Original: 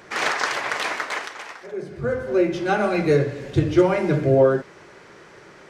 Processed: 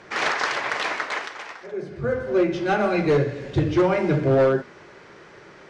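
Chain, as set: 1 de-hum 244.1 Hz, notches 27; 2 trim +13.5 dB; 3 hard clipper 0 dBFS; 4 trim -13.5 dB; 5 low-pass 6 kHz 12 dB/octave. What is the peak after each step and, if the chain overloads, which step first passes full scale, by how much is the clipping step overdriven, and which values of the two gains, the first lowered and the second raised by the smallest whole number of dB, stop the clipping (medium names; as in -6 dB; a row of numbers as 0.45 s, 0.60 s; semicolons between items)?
-5.0 dBFS, +8.5 dBFS, 0.0 dBFS, -13.5 dBFS, -13.0 dBFS; step 2, 8.5 dB; step 2 +4.5 dB, step 4 -4.5 dB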